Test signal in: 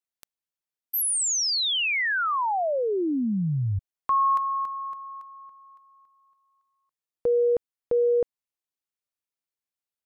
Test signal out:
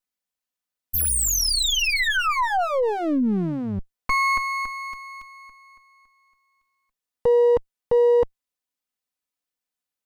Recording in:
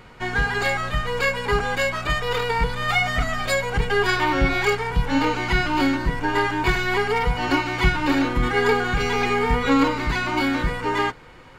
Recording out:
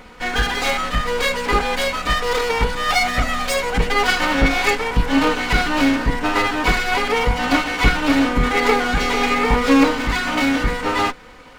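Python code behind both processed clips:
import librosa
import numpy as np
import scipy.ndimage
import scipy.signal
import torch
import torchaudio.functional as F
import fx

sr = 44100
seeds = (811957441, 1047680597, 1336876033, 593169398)

y = fx.lower_of_two(x, sr, delay_ms=4.0)
y = y * 10.0 ** (5.0 / 20.0)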